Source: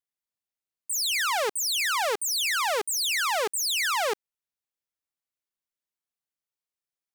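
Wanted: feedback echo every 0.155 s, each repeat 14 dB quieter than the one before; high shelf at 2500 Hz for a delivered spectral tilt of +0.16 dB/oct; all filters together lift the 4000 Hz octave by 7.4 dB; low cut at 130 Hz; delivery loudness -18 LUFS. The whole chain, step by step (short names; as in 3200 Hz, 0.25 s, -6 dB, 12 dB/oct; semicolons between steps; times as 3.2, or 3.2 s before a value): HPF 130 Hz; high shelf 2500 Hz +6 dB; bell 4000 Hz +4 dB; feedback echo 0.155 s, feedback 20%, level -14 dB; gain +1 dB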